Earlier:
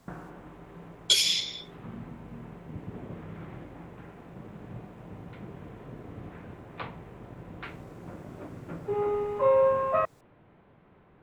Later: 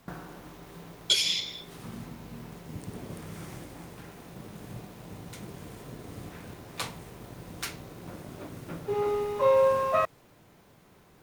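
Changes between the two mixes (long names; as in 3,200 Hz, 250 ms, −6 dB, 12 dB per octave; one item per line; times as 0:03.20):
background: remove Bessel low-pass filter 1,800 Hz, order 8
master: add high-shelf EQ 5,200 Hz −5.5 dB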